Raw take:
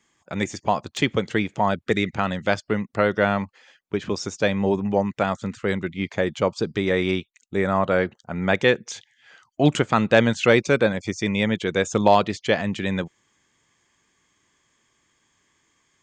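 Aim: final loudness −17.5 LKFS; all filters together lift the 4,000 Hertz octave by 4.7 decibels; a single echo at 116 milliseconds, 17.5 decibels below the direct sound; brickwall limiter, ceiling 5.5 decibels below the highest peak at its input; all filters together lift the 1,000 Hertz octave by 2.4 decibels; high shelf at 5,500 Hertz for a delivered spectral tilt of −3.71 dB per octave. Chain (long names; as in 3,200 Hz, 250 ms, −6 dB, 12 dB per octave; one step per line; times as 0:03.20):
parametric band 1,000 Hz +3 dB
parametric band 4,000 Hz +7 dB
high-shelf EQ 5,500 Hz −4 dB
brickwall limiter −7 dBFS
single-tap delay 116 ms −17.5 dB
level +5.5 dB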